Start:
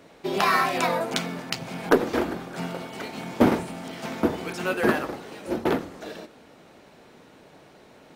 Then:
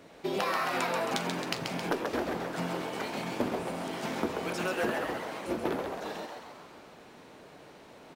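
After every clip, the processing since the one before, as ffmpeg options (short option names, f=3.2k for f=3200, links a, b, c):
-filter_complex "[0:a]acompressor=threshold=-26dB:ratio=10,asplit=2[a][b];[b]asplit=8[c][d][e][f][g][h][i][j];[c]adelay=134,afreqshift=140,volume=-5dB[k];[d]adelay=268,afreqshift=280,volume=-9.7dB[l];[e]adelay=402,afreqshift=420,volume=-14.5dB[m];[f]adelay=536,afreqshift=560,volume=-19.2dB[n];[g]adelay=670,afreqshift=700,volume=-23.9dB[o];[h]adelay=804,afreqshift=840,volume=-28.7dB[p];[i]adelay=938,afreqshift=980,volume=-33.4dB[q];[j]adelay=1072,afreqshift=1120,volume=-38.1dB[r];[k][l][m][n][o][p][q][r]amix=inputs=8:normalize=0[s];[a][s]amix=inputs=2:normalize=0,volume=-2dB"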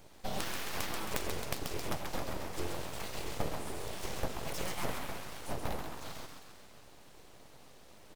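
-af "equalizer=f=1.1k:w=0.32:g=-14.5,aeval=exprs='abs(val(0))':c=same,volume=6dB"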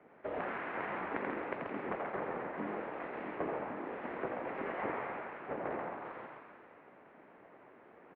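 -filter_complex "[0:a]highpass=f=350:t=q:w=0.5412,highpass=f=350:t=q:w=1.307,lowpass=f=2.2k:t=q:w=0.5176,lowpass=f=2.2k:t=q:w=0.7071,lowpass=f=2.2k:t=q:w=1.932,afreqshift=-140,asplit=8[a][b][c][d][e][f][g][h];[b]adelay=84,afreqshift=110,volume=-5dB[i];[c]adelay=168,afreqshift=220,volume=-10.7dB[j];[d]adelay=252,afreqshift=330,volume=-16.4dB[k];[e]adelay=336,afreqshift=440,volume=-22dB[l];[f]adelay=420,afreqshift=550,volume=-27.7dB[m];[g]adelay=504,afreqshift=660,volume=-33.4dB[n];[h]adelay=588,afreqshift=770,volume=-39.1dB[o];[a][i][j][k][l][m][n][o]amix=inputs=8:normalize=0,volume=2dB"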